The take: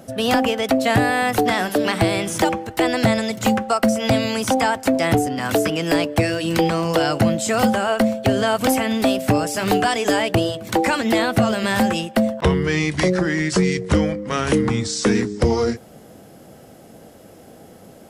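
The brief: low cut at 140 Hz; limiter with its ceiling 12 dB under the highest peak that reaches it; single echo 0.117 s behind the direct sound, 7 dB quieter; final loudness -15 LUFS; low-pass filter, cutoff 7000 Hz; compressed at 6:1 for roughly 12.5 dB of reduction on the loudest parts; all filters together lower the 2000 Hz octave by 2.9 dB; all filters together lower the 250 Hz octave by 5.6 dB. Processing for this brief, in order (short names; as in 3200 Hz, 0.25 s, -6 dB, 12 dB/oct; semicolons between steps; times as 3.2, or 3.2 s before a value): HPF 140 Hz; LPF 7000 Hz; bell 250 Hz -6.5 dB; bell 2000 Hz -3.5 dB; compressor 6:1, threshold -30 dBFS; limiter -27.5 dBFS; echo 0.117 s -7 dB; gain +20.5 dB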